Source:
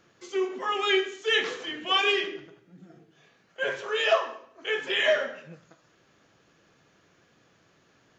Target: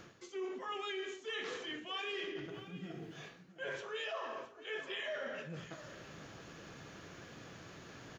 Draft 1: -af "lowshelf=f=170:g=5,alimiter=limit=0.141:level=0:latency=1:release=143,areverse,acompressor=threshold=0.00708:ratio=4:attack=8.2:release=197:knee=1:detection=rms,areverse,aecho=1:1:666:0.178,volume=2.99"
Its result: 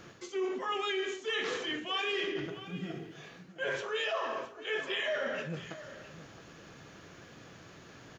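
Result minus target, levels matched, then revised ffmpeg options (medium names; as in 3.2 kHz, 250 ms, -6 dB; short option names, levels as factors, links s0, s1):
compression: peak gain reduction -7.5 dB
-af "lowshelf=f=170:g=5,alimiter=limit=0.141:level=0:latency=1:release=143,areverse,acompressor=threshold=0.00224:ratio=4:attack=8.2:release=197:knee=1:detection=rms,areverse,aecho=1:1:666:0.178,volume=2.99"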